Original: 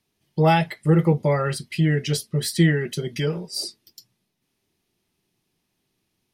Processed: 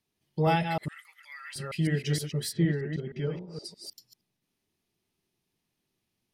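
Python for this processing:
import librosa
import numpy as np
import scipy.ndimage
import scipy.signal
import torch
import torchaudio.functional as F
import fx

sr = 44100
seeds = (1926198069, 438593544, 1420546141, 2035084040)

y = fx.reverse_delay(x, sr, ms=156, wet_db=-6)
y = fx.cheby2_highpass(y, sr, hz=410.0, order=4, stop_db=70, at=(0.88, 1.56))
y = fx.spacing_loss(y, sr, db_at_10k=32, at=(2.51, 3.64), fade=0.02)
y = y * 10.0 ** (-7.5 / 20.0)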